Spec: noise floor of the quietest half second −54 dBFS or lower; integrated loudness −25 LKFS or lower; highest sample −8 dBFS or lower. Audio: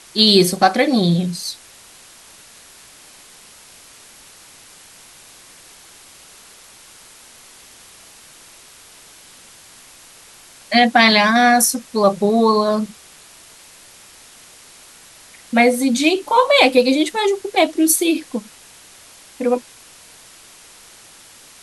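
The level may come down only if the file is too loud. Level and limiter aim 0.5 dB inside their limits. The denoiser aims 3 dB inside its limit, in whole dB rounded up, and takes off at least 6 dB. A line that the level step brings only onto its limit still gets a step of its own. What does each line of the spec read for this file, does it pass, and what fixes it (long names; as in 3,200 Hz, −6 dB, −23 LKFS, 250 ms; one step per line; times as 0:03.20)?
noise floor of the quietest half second −45 dBFS: out of spec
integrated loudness −15.5 LKFS: out of spec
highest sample −1.5 dBFS: out of spec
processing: level −10 dB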